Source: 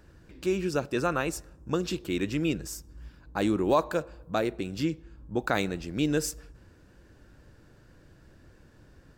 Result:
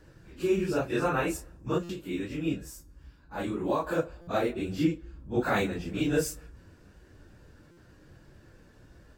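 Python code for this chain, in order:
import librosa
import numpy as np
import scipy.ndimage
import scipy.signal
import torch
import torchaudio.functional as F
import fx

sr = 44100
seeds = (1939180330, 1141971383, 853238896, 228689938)

y = fx.phase_scramble(x, sr, seeds[0], window_ms=100)
y = fx.dynamic_eq(y, sr, hz=5300.0, q=1.1, threshold_db=-53.0, ratio=4.0, max_db=-6)
y = fx.comb_fb(y, sr, f0_hz=280.0, decay_s=0.37, harmonics='all', damping=0.0, mix_pct=50, at=(1.78, 3.87))
y = fx.buffer_glitch(y, sr, at_s=(1.83, 4.21, 7.71), block=256, repeats=10)
y = y * 10.0 ** (1.0 / 20.0)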